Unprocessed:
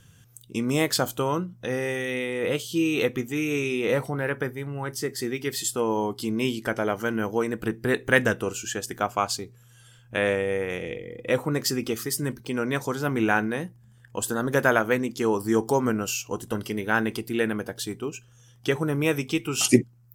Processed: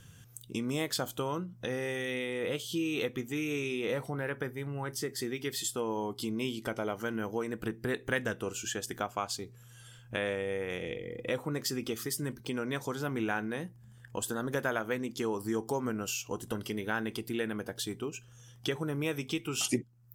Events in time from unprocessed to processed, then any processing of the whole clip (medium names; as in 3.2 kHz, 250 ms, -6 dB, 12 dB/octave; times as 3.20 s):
6.13–6.96 s: band-stop 1.7 kHz, Q 5.4
whole clip: compression 2:1, threshold -37 dBFS; dynamic bell 3.4 kHz, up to +5 dB, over -59 dBFS, Q 6.2